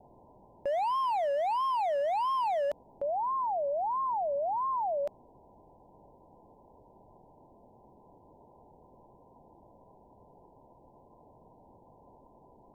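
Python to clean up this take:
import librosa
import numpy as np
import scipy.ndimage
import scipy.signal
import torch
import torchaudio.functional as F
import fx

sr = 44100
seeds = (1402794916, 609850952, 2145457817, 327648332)

y = fx.fix_declip(x, sr, threshold_db=-27.0)
y = fx.noise_reduce(y, sr, print_start_s=10.46, print_end_s=10.96, reduce_db=20.0)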